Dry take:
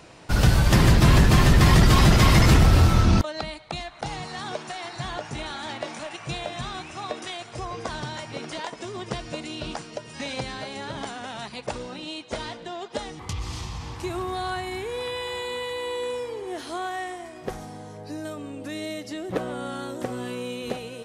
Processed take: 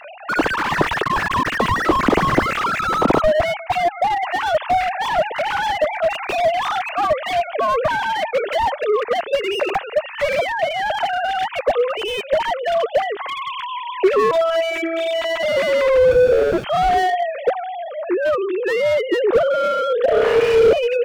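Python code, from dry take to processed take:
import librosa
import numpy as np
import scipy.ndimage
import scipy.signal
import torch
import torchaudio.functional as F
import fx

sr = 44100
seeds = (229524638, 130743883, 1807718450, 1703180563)

y = fx.sine_speech(x, sr)
y = 10.0 ** (-11.0 / 20.0) * np.tanh(y / 10.0 ** (-11.0 / 20.0))
y = fx.robotise(y, sr, hz=328.0, at=(14.31, 15.43))
y = fx.sample_hold(y, sr, seeds[0], rate_hz=1000.0, jitter_pct=0, at=(16.11, 16.63), fade=0.02)
y = fx.room_flutter(y, sr, wall_m=5.3, rt60_s=1.3, at=(20.05, 20.73))
y = fx.slew_limit(y, sr, full_power_hz=62.0)
y = F.gain(torch.from_numpy(y), 8.0).numpy()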